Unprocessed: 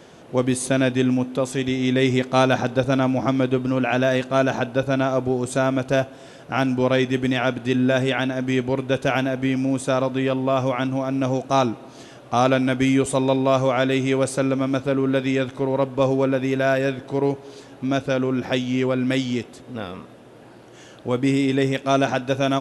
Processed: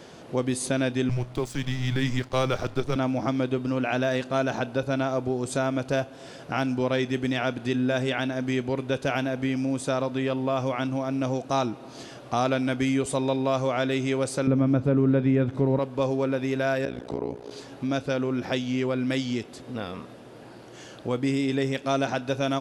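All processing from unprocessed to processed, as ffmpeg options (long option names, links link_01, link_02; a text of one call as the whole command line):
ffmpeg -i in.wav -filter_complex "[0:a]asettb=1/sr,asplit=3[link_01][link_02][link_03];[link_01]atrim=end=1.094[link_04];[link_02]atrim=start=1.09:end=2.96,asetpts=PTS-STARTPTS,afade=type=in:duration=0.004:curve=qsin,afade=type=out:start_time=1.866:duration=0.004:curve=qsin,aeval=exprs='sgn(val(0))*max(abs(val(0))-0.0126,0)':channel_layout=same,afreqshift=-130[link_05];[link_03]atrim=start=2.956[link_06];[link_04][link_05]acrossfade=duration=0.004:curve1=hsin:curve2=qsin[link_07];[link_07][link_06]acrossfade=duration=0.004:curve1=qsin:curve2=hsin,asettb=1/sr,asplit=3[link_08][link_09][link_10];[link_08]atrim=end=14.474[link_11];[link_09]atrim=start=14.47:end=15.79,asetpts=PTS-STARTPTS,afade=type=in:duration=0.004:curve=qsin,afade=type=out:start_time=1.316:duration=0.004:curve=qsin,acrossover=split=2500[link_12][link_13];[link_13]acompressor=threshold=-51dB:ratio=4:attack=1:release=60[link_14];[link_12][link_14]amix=inputs=2:normalize=0,equalizer=frequency=100:width=0.31:gain=12.5[link_15];[link_10]atrim=start=15.786[link_16];[link_11][link_15]acrossfade=duration=0.004:curve1=hsin:curve2=qsin[link_17];[link_17][link_16]acrossfade=duration=0.004:curve1=qsin:curve2=hsin,asettb=1/sr,asplit=3[link_18][link_19][link_20];[link_18]atrim=end=16.854[link_21];[link_19]atrim=start=16.85:end=17.51,asetpts=PTS-STARTPTS,afade=type=in:duration=0.004:curve=qsin,afade=type=out:start_time=0.656:duration=0.004:curve=qsin,equalizer=frequency=420:width=0.48:gain=5,acompressor=threshold=-19dB:ratio=4:attack=3.2:release=140:knee=1:detection=peak,tremolo=f=59:d=0.974[link_22];[link_20]atrim=start=17.506[link_23];[link_21][link_22]acrossfade=duration=0.004:curve1=hsin:curve2=qsin[link_24];[link_24][link_23]acrossfade=duration=0.004:curve1=qsin:curve2=hsin,equalizer=frequency=4700:width_type=o:width=0.39:gain=4.5,acompressor=threshold=-32dB:ratio=1.5" out.wav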